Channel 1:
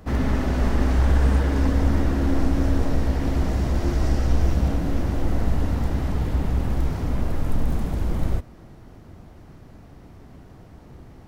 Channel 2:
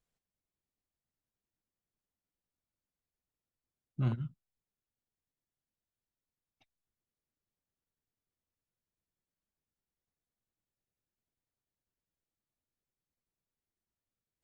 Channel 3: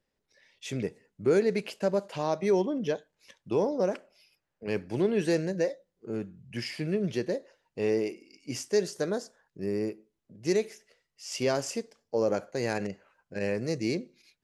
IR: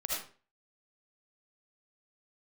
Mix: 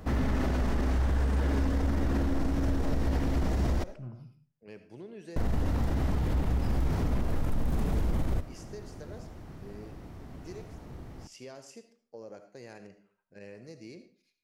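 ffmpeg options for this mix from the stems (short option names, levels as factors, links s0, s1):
-filter_complex "[0:a]volume=0.944,asplit=3[s0][s1][s2];[s0]atrim=end=3.84,asetpts=PTS-STARTPTS,afade=t=out:st=3.836:d=0.004:c=hsin[s3];[s1]atrim=start=3.84:end=5.36,asetpts=PTS-STARTPTS,volume=0[s4];[s2]atrim=start=5.36,asetpts=PTS-STARTPTS,afade=t=in:d=0.004:c=hsin[s5];[s3][s4][s5]concat=n=3:v=0:a=1,asplit=2[s6][s7];[s7]volume=0.0668[s8];[1:a]lowpass=1000,volume=0.178,asplit=2[s9][s10];[s10]volume=0.668[s11];[2:a]acompressor=threshold=0.0447:ratio=3,volume=0.141,asplit=2[s12][s13];[s13]volume=0.282[s14];[3:a]atrim=start_sample=2205[s15];[s8][s11][s14]amix=inputs=3:normalize=0[s16];[s16][s15]afir=irnorm=-1:irlink=0[s17];[s6][s9][s12][s17]amix=inputs=4:normalize=0,alimiter=limit=0.0944:level=0:latency=1:release=36"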